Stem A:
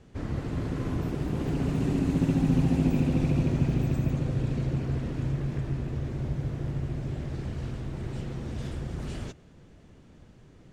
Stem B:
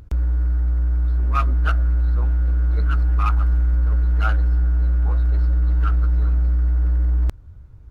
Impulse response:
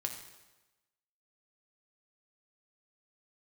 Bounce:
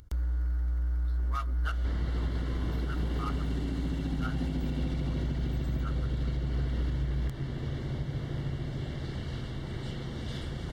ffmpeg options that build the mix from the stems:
-filter_complex "[0:a]highshelf=frequency=5100:width_type=q:width=1.5:gain=-7.5,acompressor=mode=upward:threshold=-33dB:ratio=2.5,adelay=1700,volume=-2.5dB[link_01];[1:a]volume=-10.5dB[link_02];[link_01][link_02]amix=inputs=2:normalize=0,asuperstop=centerf=2500:order=8:qfactor=6.5,highshelf=frequency=2100:gain=10.5,alimiter=limit=-23dB:level=0:latency=1:release=206"

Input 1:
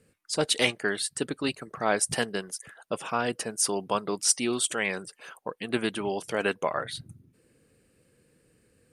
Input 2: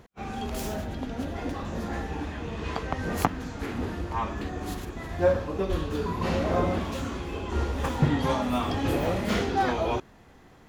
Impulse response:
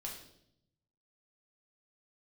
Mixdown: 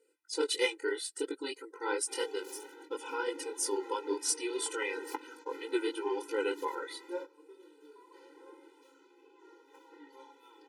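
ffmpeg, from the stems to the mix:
-filter_complex "[0:a]flanger=delay=17.5:depth=6.3:speed=3,equalizer=frequency=470:width=0.82:gain=2.5,volume=-1.5dB,asplit=2[link_01][link_02];[1:a]adelay=1900,volume=-10dB[link_03];[link_02]apad=whole_len=555155[link_04];[link_03][link_04]sidechaingate=range=-14dB:threshold=-58dB:ratio=16:detection=peak[link_05];[link_01][link_05]amix=inputs=2:normalize=0,afftfilt=real='re*eq(mod(floor(b*sr/1024/260),2),1)':imag='im*eq(mod(floor(b*sr/1024/260),2),1)':win_size=1024:overlap=0.75"

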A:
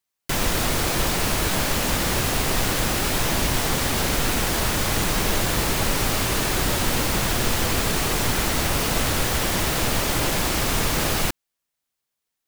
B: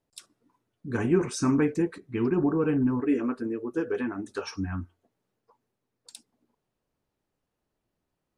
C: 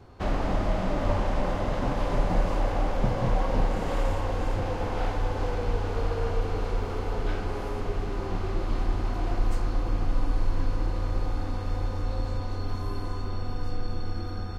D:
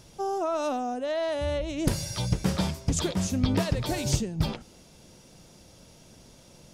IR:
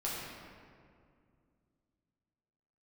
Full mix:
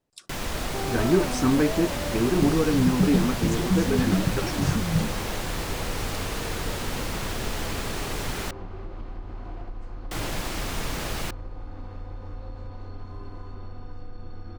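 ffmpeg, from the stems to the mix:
-filter_complex "[0:a]volume=-8dB,asplit=3[link_01][link_02][link_03];[link_01]atrim=end=8.51,asetpts=PTS-STARTPTS,afade=type=out:start_time=8.506:duration=0.004:curve=hsin[link_04];[link_02]atrim=start=8.51:end=10.11,asetpts=PTS-STARTPTS,volume=0[link_05];[link_03]atrim=start=10.11,asetpts=PTS-STARTPTS,afade=type=in:duration=0.004:curve=hsin[link_06];[link_04][link_05][link_06]concat=n=3:v=0:a=1[link_07];[1:a]volume=2dB[link_08];[2:a]lowpass=frequency=3100:poles=1,acompressor=threshold=-26dB:ratio=6,adelay=300,volume=-5.5dB[link_09];[3:a]equalizer=frequency=180:width_type=o:width=1.1:gain=13.5,adelay=550,volume=-7dB[link_10];[link_07][link_08][link_09][link_10]amix=inputs=4:normalize=0,highshelf=frequency=8600:gain=-7"

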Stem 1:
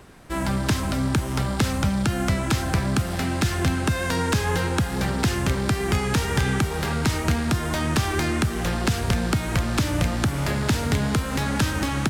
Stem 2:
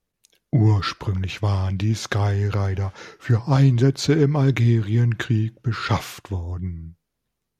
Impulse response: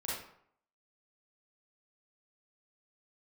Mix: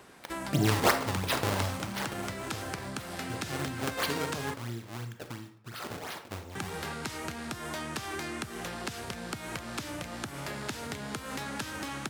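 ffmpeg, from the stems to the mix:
-filter_complex "[0:a]acompressor=threshold=-28dB:ratio=6,volume=-2.5dB,asplit=3[link_01][link_02][link_03];[link_01]atrim=end=4.54,asetpts=PTS-STARTPTS,afade=type=out:start_time=4.536:duration=0.004:curve=hsin[link_04];[link_02]atrim=start=4.54:end=6.55,asetpts=PTS-STARTPTS,volume=0[link_05];[link_03]atrim=start=6.55,asetpts=PTS-STARTPTS,afade=type=in:duration=0.004:curve=hsin[link_06];[link_04][link_05][link_06]concat=n=3:v=0:a=1[link_07];[1:a]aexciter=amount=3.2:drive=8.5:freq=3600,acrusher=samples=27:mix=1:aa=0.000001:lfo=1:lforange=43.2:lforate=2.9,volume=4.5dB,afade=type=out:start_time=1.61:duration=0.26:silence=0.237137,afade=type=in:start_time=6.11:duration=0.21:silence=0.375837,asplit=2[link_08][link_09];[link_09]volume=-8dB[link_10];[2:a]atrim=start_sample=2205[link_11];[link_10][link_11]afir=irnorm=-1:irlink=0[link_12];[link_07][link_08][link_12]amix=inputs=3:normalize=0,highpass=frequency=340:poles=1"

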